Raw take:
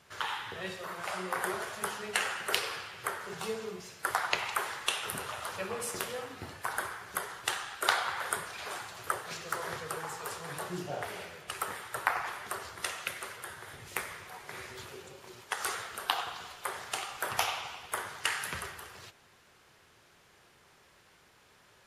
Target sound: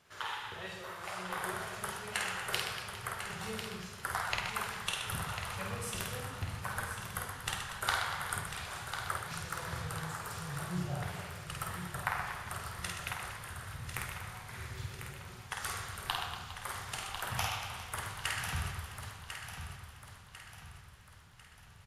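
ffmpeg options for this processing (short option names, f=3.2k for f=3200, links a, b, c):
-filter_complex "[0:a]asplit=2[a][b];[b]aecho=0:1:1047|2094|3141|4188|5235:0.376|0.162|0.0695|0.0299|0.0128[c];[a][c]amix=inputs=2:normalize=0,asubboost=boost=11.5:cutoff=110,asplit=2[d][e];[e]aecho=0:1:50|125|237.5|406.2|659.4:0.631|0.398|0.251|0.158|0.1[f];[d][f]amix=inputs=2:normalize=0,volume=-5.5dB"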